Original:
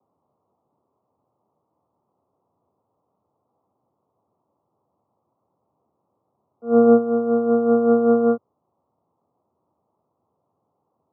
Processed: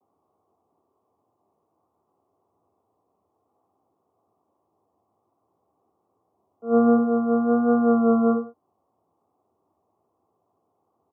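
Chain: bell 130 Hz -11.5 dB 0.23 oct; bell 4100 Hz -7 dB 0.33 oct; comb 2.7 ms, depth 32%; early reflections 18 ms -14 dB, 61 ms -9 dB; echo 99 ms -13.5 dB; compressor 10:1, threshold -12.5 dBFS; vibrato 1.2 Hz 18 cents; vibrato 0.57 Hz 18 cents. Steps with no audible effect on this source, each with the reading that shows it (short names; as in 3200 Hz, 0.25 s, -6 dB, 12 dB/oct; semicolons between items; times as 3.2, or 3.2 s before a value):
bell 4100 Hz: input band ends at 1400 Hz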